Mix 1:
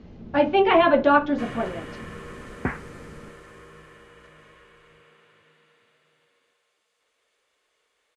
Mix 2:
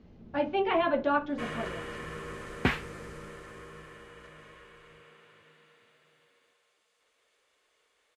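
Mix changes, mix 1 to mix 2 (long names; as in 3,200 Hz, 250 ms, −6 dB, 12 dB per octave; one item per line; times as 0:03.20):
speech −9.5 dB
second sound: remove Butterworth low-pass 2,000 Hz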